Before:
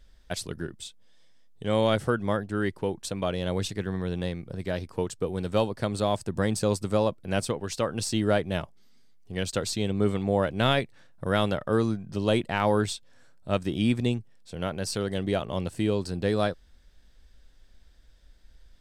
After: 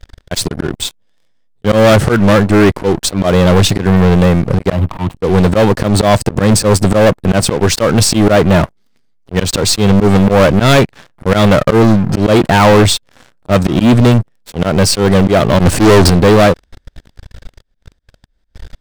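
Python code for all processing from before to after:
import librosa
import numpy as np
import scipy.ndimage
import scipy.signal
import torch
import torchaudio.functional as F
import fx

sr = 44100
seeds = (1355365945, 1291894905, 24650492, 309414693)

y = fx.chain(x, sr, fx.median_filter(points=25),
    fx.fixed_phaser(hz=1600.0, stages=6),
    fx.band_squash(depth_pct=70), at=(4.72, 5.17))
y = fx.chain(y, sr, fx.leveller(passes=3),
    fx.doppler_dist(depth_ms=0.42), at=(15.59, 16.1))
y = fx.high_shelf(y, sr, hz=2800.0, db=-7.5)
y = fx.auto_swell(y, sr, attack_ms=140.0)
y = fx.leveller(y, sr, passes=5)
y = y * 10.0 ** (9.0 / 20.0)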